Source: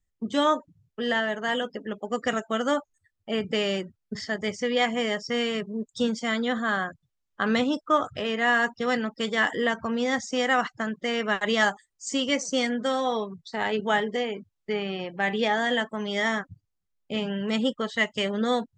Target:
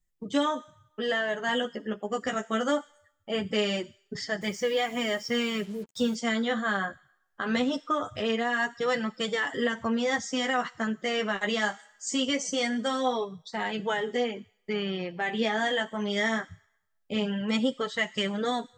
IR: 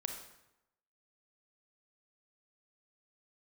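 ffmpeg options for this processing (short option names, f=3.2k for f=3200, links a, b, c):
-filter_complex "[0:a]asplit=2[a][b];[b]aderivative[c];[1:a]atrim=start_sample=2205[d];[c][d]afir=irnorm=-1:irlink=0,volume=-5dB[e];[a][e]amix=inputs=2:normalize=0,alimiter=limit=-16dB:level=0:latency=1:release=128,asettb=1/sr,asplit=3[f][g][h];[f]atrim=end=4.414[i];[g]atrim=start=4.41:end=6.15,asetpts=PTS-STARTPTS,afade=t=in:d=0.004:c=qsin,afade=t=out:st=1.736:d=0.004:c=qsin,acrusher=bits=7:mix=0:aa=0.5[j];[h]atrim=start=6.146[k];[i][j]acrossfade=d=0.004:c1=hsin:c2=qsin[l];[l][k]acrossfade=d=0.004:c1=qsin:c2=hsin,flanger=delay=5.4:depth=10:regen=-5:speed=0.22:shape=triangular,volume=2dB"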